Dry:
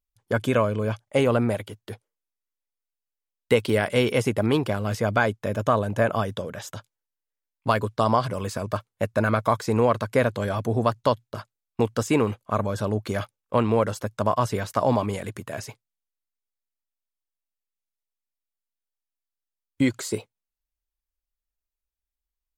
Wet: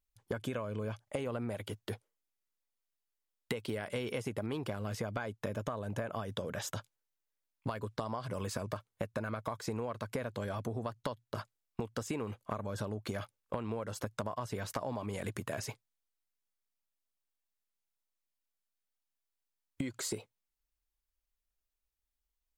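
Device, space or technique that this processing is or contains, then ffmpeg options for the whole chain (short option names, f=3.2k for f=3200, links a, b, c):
serial compression, peaks first: -af "acompressor=threshold=-28dB:ratio=6,acompressor=threshold=-35dB:ratio=3"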